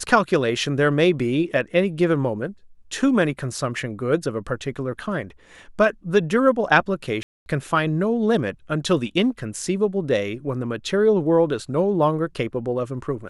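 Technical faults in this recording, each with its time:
7.23–7.46 gap 0.231 s

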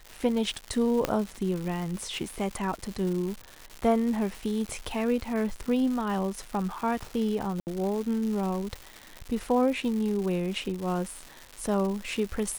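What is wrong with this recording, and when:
crackle 300/s -33 dBFS
1.05 pop -11 dBFS
7.6–7.67 gap 69 ms

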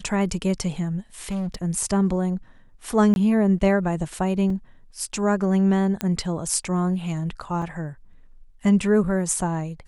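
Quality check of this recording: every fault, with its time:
1.29–1.56 clipped -24 dBFS
3.14–3.16 gap 21 ms
4.5 gap 2.8 ms
6.01 pop -10 dBFS
7.62 gap 2.6 ms

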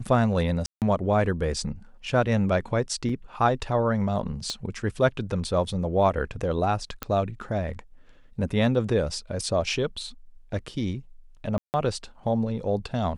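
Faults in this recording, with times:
0.66–0.82 gap 0.158 s
3.09 gap 4.4 ms
4.5 pop -18 dBFS
7.03 pop -13 dBFS
11.58–11.74 gap 0.159 s

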